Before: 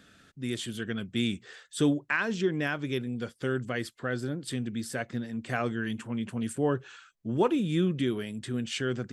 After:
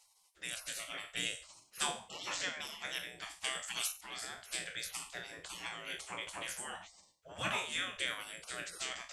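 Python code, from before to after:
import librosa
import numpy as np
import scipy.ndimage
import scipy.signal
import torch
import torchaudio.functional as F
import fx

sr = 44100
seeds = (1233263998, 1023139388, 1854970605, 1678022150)

y = fx.spec_trails(x, sr, decay_s=0.41)
y = fx.graphic_eq(y, sr, hz=(250, 500, 2000, 8000), db=(6, 6, 6, 7))
y = fx.spec_gate(y, sr, threshold_db=-25, keep='weak')
y = fx.high_shelf(y, sr, hz=2800.0, db=11.5, at=(3.44, 4.01))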